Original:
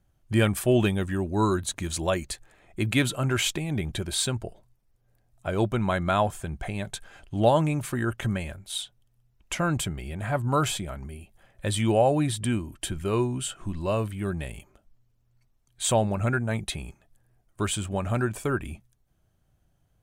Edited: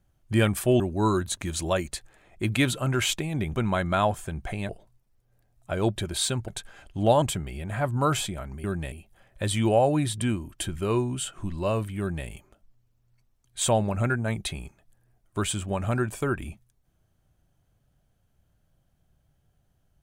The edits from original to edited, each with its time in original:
0.8–1.17 cut
3.92–4.45 swap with 5.71–6.85
7.59–9.73 cut
14.22–14.5 copy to 11.15

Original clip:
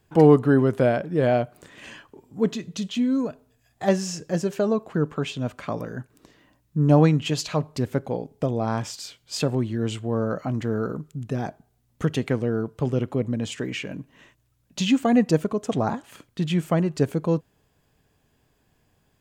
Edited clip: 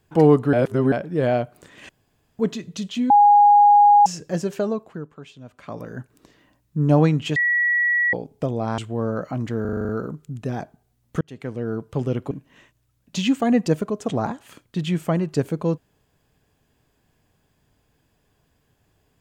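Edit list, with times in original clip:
0.53–0.92 reverse
1.89–2.39 room tone
3.1–4.06 bleep 823 Hz -9 dBFS
4.58–5.99 dip -14 dB, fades 0.49 s
7.36–8.13 bleep 1930 Hz -16.5 dBFS
8.78–9.92 cut
10.75 stutter 0.04 s, 8 plays
12.07–12.66 fade in
13.17–13.94 cut

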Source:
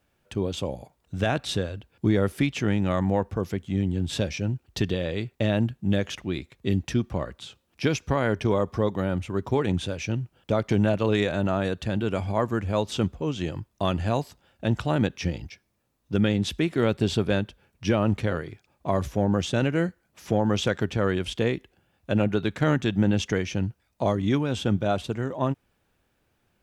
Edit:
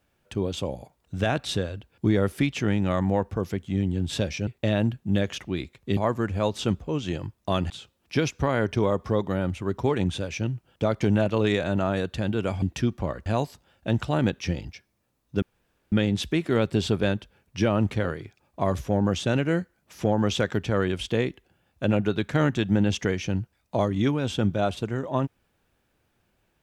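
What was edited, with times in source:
4.47–5.24 cut
6.74–7.38 swap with 12.3–14.03
16.19 insert room tone 0.50 s

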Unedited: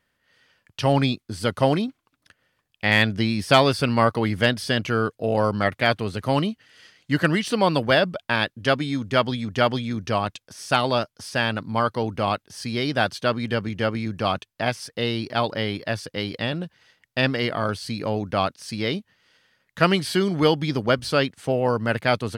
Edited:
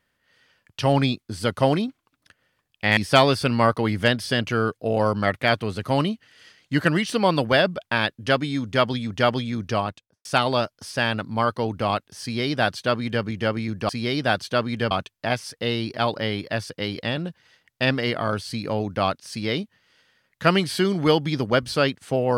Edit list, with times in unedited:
2.97–3.35 cut
10.1–10.63 studio fade out
12.6–13.62 copy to 14.27

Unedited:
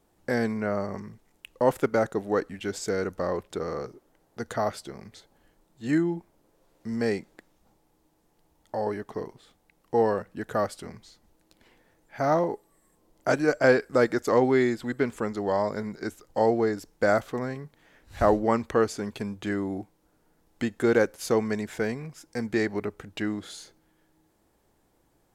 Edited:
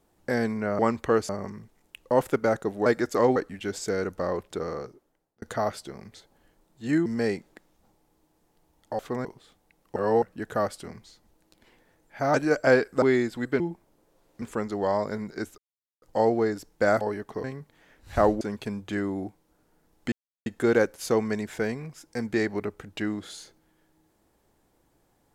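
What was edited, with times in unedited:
3.65–4.42 fade out
6.06–6.88 move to 15.07
8.81–9.24 swap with 17.22–17.48
9.95–10.21 reverse
12.33–13.31 cut
13.99–14.49 move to 2.36
16.23 insert silence 0.44 s
18.45–18.95 move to 0.79
20.66 insert silence 0.34 s

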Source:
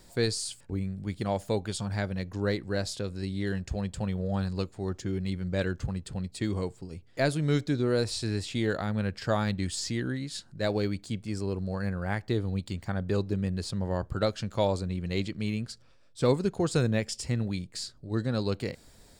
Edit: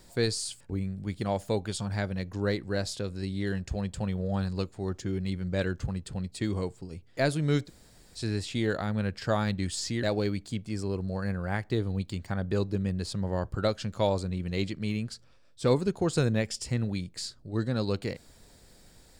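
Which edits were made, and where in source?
7.67–8.18 room tone, crossfade 0.06 s
10.03–10.61 cut

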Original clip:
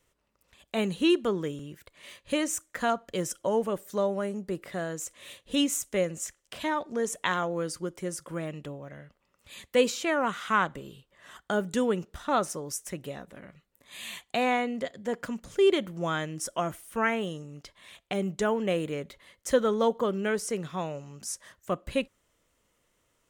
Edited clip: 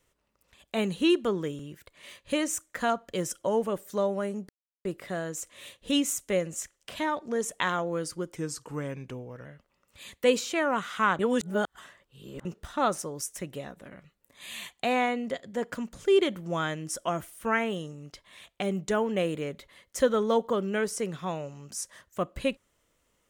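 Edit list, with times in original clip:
4.49 insert silence 0.36 s
8–8.96 speed 88%
10.7–11.96 reverse

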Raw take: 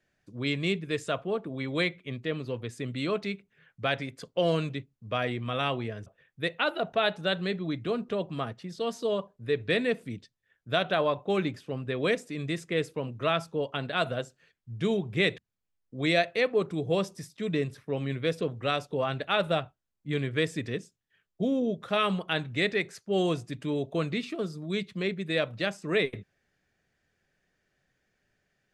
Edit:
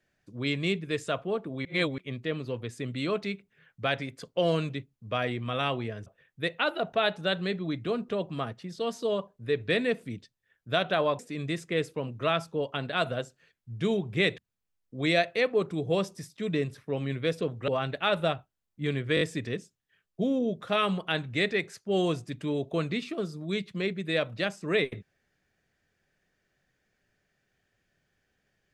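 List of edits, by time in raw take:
1.65–1.98 reverse
11.19–12.19 cut
18.68–18.95 cut
20.42 stutter 0.02 s, 4 plays

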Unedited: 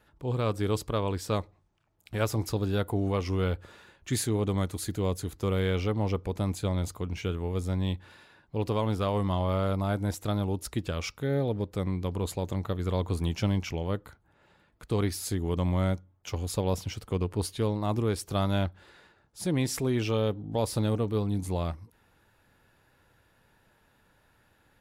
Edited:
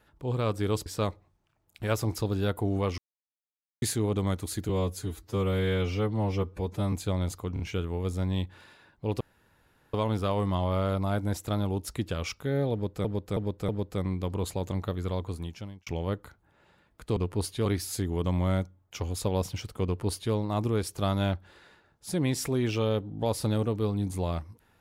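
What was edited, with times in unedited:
0.86–1.17 cut
3.29–4.13 mute
5–6.49 stretch 1.5×
7.1 stutter 0.03 s, 3 plays
8.71 insert room tone 0.73 s
11.5–11.82 loop, 4 plays
12.67–13.68 fade out
17.17–17.66 copy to 14.98

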